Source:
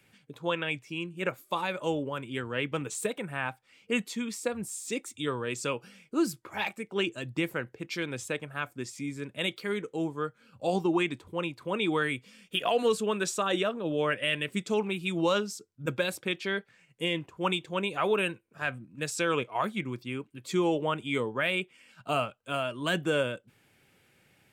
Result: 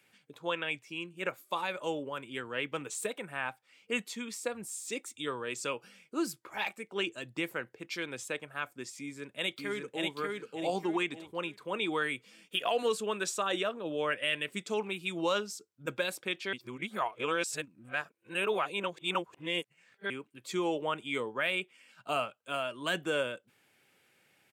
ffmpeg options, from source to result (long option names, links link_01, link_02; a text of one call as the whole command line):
ffmpeg -i in.wav -filter_complex "[0:a]asplit=2[link_01][link_02];[link_02]afade=type=in:start_time=8.99:duration=0.01,afade=type=out:start_time=10.13:duration=0.01,aecho=0:1:590|1180|1770|2360:0.794328|0.238298|0.0714895|0.0214469[link_03];[link_01][link_03]amix=inputs=2:normalize=0,asplit=3[link_04][link_05][link_06];[link_04]atrim=end=16.532[link_07];[link_05]atrim=start=16.528:end=20.102,asetpts=PTS-STARTPTS,areverse[link_08];[link_06]atrim=start=20.098[link_09];[link_07][link_08]acrossfade=duration=0.004:curve1=hsin:curve2=hsin[link_10];[link_10][link_09]acrossfade=duration=0.004:curve1=hsin:curve2=hsin,highpass=frequency=390:poles=1,volume=-2dB" out.wav